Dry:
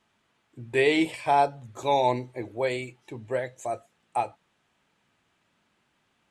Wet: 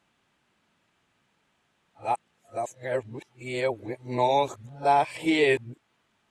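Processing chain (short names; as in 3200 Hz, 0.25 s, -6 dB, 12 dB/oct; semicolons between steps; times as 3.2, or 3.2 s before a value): whole clip reversed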